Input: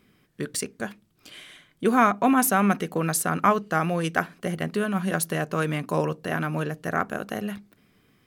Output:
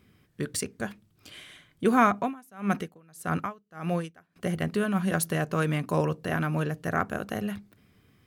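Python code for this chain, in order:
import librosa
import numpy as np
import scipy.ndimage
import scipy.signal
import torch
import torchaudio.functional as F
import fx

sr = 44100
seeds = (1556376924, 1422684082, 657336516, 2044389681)

y = fx.peak_eq(x, sr, hz=85.0, db=10.5, octaves=1.1)
y = fx.tremolo_db(y, sr, hz=1.7, depth_db=32, at=(2.17, 4.36))
y = y * librosa.db_to_amplitude(-2.0)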